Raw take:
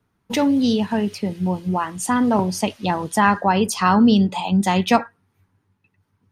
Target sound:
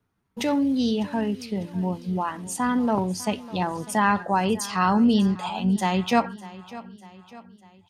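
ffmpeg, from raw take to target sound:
-af "atempo=0.8,aecho=1:1:600|1200|1800|2400:0.126|0.0629|0.0315|0.0157,volume=-5dB"

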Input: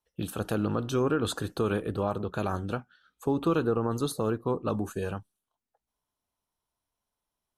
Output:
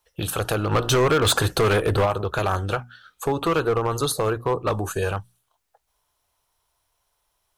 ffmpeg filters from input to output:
-filter_complex "[0:a]asplit=2[a][b];[b]acompressor=threshold=-34dB:ratio=6,volume=2.5dB[c];[a][c]amix=inputs=2:normalize=0,equalizer=f=230:w=1.3:g=-15,asplit=3[d][e][f];[d]afade=t=out:st=0.71:d=0.02[g];[e]acontrast=42,afade=t=in:st=0.71:d=0.02,afade=t=out:st=2.04:d=0.02[h];[f]afade=t=in:st=2.04:d=0.02[i];[g][h][i]amix=inputs=3:normalize=0,asoftclip=type=hard:threshold=-22.5dB,bandreject=f=60:t=h:w=6,bandreject=f=120:t=h:w=6,bandreject=f=180:t=h:w=6,bandreject=f=240:t=h:w=6,volume=7.5dB"

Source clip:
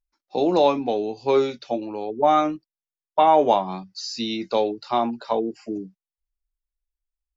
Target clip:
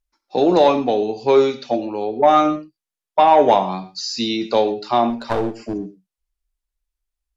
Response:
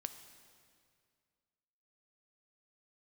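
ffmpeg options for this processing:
-filter_complex "[0:a]asettb=1/sr,asplit=3[a][b][c];[a]atrim=end=5.104[d];[b]atrim=start=5.1:end=5.74,asetpts=PTS-STARTPTS,afade=t=in:d=0.004:c=qsin,afade=t=out:st=0.636:d=0.004:c=qsin,aeval=exprs='clip(val(0),-1,0.0316)':c=same[e];[c]atrim=start=5.736[f];[d][e]acrossfade=d=0.004:c1=hsin:c2=qsin[g];[g][f]acrossfade=d=0.004:c1=qsin:c2=hsin,acontrast=48[h];[1:a]atrim=start_sample=2205,atrim=end_sample=3528,asetrate=26460,aresample=44100[i];[h][i]afir=irnorm=-1:irlink=0"

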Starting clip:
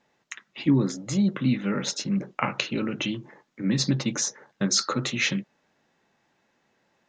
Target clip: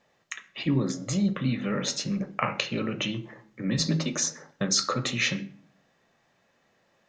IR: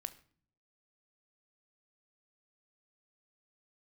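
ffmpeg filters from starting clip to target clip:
-filter_complex "[0:a]asplit=2[a][b];[b]acompressor=threshold=-30dB:ratio=6,volume=-2.5dB[c];[a][c]amix=inputs=2:normalize=0,asettb=1/sr,asplit=3[d][e][f];[d]atrim=end=3.784[g];[e]atrim=start=3.78:end=4.22,asetpts=PTS-STARTPTS,afade=t=in:d=0.004:c=qsin,afade=t=out:st=0.436:d=0.004:c=qsin,afreqshift=26[h];[f]atrim=start=4.216[i];[g][h]acrossfade=d=0.004:c1=hsin:c2=qsin[j];[j][i]acrossfade=d=0.004:c1=qsin:c2=hsin[k];[1:a]atrim=start_sample=2205[l];[k][l]afir=irnorm=-1:irlink=0"

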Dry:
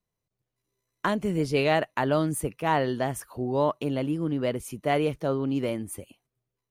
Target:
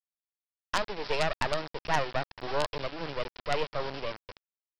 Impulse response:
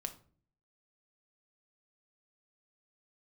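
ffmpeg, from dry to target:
-filter_complex "[0:a]highpass=f=460:w=0.5412,highpass=f=460:w=1.3066,asplit=2[a][b];[b]acompressor=mode=upward:threshold=-27dB:ratio=2.5,volume=-3dB[c];[a][c]amix=inputs=2:normalize=0,aeval=exprs='val(0)+0.00631*sin(2*PI*1000*n/s)':c=same,atempo=1.4,aresample=11025,acrusher=bits=3:dc=4:mix=0:aa=0.000001,aresample=44100,tremolo=f=3.6:d=0.35,asoftclip=type=tanh:threshold=-15dB"

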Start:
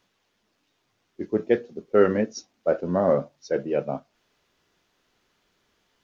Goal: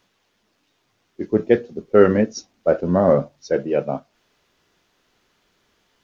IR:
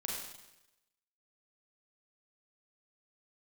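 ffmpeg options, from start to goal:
-filter_complex "[0:a]asettb=1/sr,asplit=3[a][b][c];[a]atrim=end=1.304[d];[b]atrim=start=1.3:end=3.55,asetpts=PTS-STARTPTS,afade=t=in:d=0.004:c=qsin,afade=t=out:st=2.246:d=0.004:c=qsin,lowshelf=f=130:g=8.5[e];[c]atrim=start=3.546[f];[d][e]acrossfade=d=0.004:c1=hsin:c2=qsin[g];[g][f]acrossfade=d=0.004:c1=qsin:c2=hsin,volume=4.5dB"

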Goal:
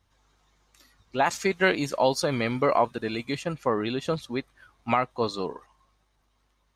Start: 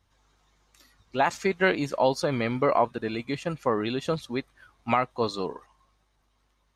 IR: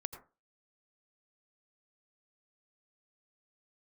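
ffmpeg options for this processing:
-filter_complex "[0:a]asettb=1/sr,asplit=3[a][b][c];[a]atrim=end=1.264[d];[b]atrim=start=1.26:end=3.42,asetpts=PTS-STARTPTS,afade=t=in:d=0.004:c=qsin,afade=t=out:st=2.156:d=0.004:c=qsin,highshelf=f=3.9k:g=7.5[e];[c]atrim=start=3.416[f];[d][e]acrossfade=d=0.004:c1=hsin:c2=qsin[g];[g][f]acrossfade=d=0.004:c1=qsin:c2=hsin"

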